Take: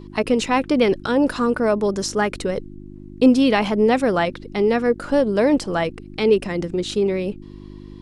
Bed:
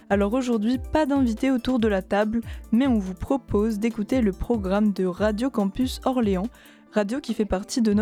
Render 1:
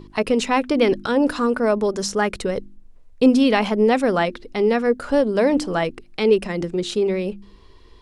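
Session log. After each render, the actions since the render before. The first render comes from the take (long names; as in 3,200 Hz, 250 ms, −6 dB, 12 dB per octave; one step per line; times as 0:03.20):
hum removal 50 Hz, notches 7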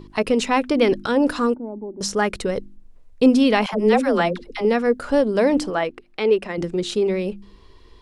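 0:01.54–0:02.01: formant resonators in series u
0:03.66–0:04.65: all-pass dispersion lows, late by 72 ms, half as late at 540 Hz
0:05.70–0:06.58: bass and treble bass −10 dB, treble −9 dB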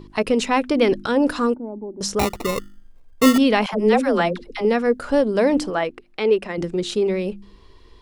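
0:02.19–0:03.38: sample-rate reduction 1,600 Hz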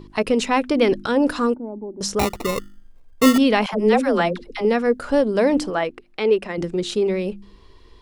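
no processing that can be heard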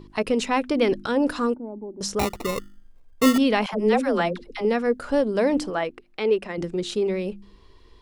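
level −3.5 dB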